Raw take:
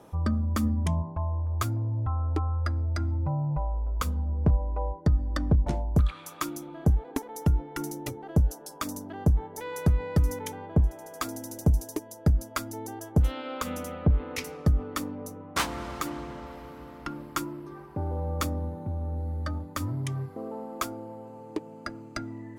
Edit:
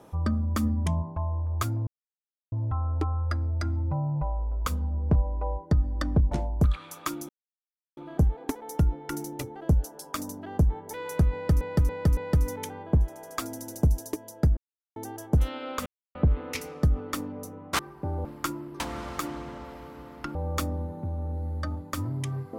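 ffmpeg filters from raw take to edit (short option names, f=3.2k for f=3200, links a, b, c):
-filter_complex "[0:a]asplit=14[a][b][c][d][e][f][g][h][i][j][k][l][m][n];[a]atrim=end=1.87,asetpts=PTS-STARTPTS,afade=t=out:st=1.866:d=0.004:c=hsin,apad=pad_dur=0.65[o];[b]atrim=start=1.87:end=6.64,asetpts=PTS-STARTPTS,afade=t=in:d=0.004:c=hsin,afade=t=out:st=4.766:d=0.004:c=hsin,apad=pad_dur=0.68[p];[c]atrim=start=6.64:end=10.282,asetpts=PTS-STARTPTS,afade=t=in:d=0.004:c=hsin[q];[d]atrim=start=9.998:end=10.282[r];[e]atrim=start=9.998:end=10.282[s];[f]atrim=start=9.998:end=12.4,asetpts=PTS-STARTPTS,afade=t=out:st=2.398:d=0.004:c=hsin[t];[g]atrim=start=12.4:end=12.79,asetpts=PTS-STARTPTS,volume=0[u];[h]atrim=start=12.79:end=13.69,asetpts=PTS-STARTPTS,afade=t=in:d=0.004:c=hsin,afade=t=out:st=0.896:d=0.004:c=hsin[v];[i]atrim=start=13.69:end=13.98,asetpts=PTS-STARTPTS,volume=0[w];[j]atrim=start=13.98:end=15.622,asetpts=PTS-STARTPTS,afade=t=in:d=0.004:c=hsin[x];[k]atrim=start=17.718:end=18.182[y];[l]atrim=start=17.168:end=17.722[z];[m]atrim=start=15.618:end=17.172[aa];[n]atrim=start=18.178[ab];[o][p][q]concat=n=3:v=0:a=1[ac];[ac][r]acrossfade=d=0.004:c1=hsin:c2=hsin[ad];[ad][s]acrossfade=d=0.004:c1=hsin:c2=hsin[ae];[t][u][v][w][x]concat=n=5:v=0:a=1[af];[ae][af]acrossfade=d=0.004:c1=hsin:c2=hsin[ag];[ag][y]acrossfade=d=0.004:c1=hsin:c2=hsin[ah];[ah][z]acrossfade=d=0.004:c1=hsin:c2=hsin[ai];[ai][aa]acrossfade=d=0.004:c1=hsin:c2=hsin[aj];[aj][ab]acrossfade=d=0.004:c1=hsin:c2=hsin"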